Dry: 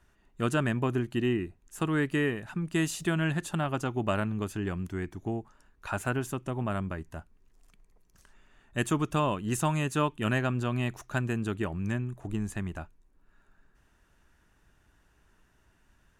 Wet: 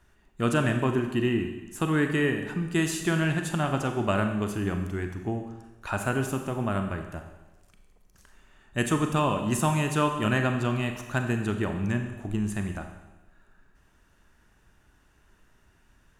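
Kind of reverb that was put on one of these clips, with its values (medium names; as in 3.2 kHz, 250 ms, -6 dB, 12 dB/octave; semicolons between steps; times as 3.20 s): Schroeder reverb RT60 1.1 s, combs from 30 ms, DRR 5.5 dB; trim +2.5 dB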